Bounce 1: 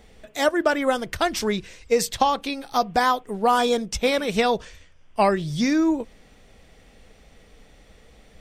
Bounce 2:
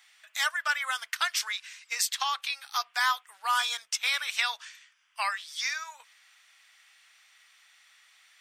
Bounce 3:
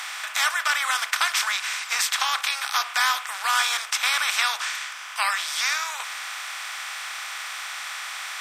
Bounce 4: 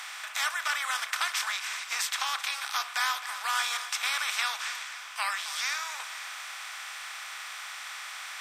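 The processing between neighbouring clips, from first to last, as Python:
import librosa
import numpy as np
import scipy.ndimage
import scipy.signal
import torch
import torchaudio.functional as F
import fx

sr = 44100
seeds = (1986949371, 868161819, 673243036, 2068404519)

y1 = scipy.signal.sosfilt(scipy.signal.cheby2(4, 60, 360.0, 'highpass', fs=sr, output='sos'), x)
y2 = fx.bin_compress(y1, sr, power=0.4)
y3 = fx.echo_feedback(y2, sr, ms=264, feedback_pct=55, wet_db=-13.0)
y3 = F.gain(torch.from_numpy(y3), -7.0).numpy()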